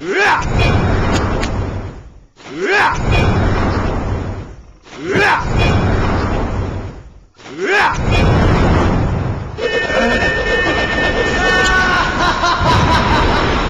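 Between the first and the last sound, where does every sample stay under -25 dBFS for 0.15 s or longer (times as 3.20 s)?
1.99–2.45 s
4.52–4.92 s
6.99–7.45 s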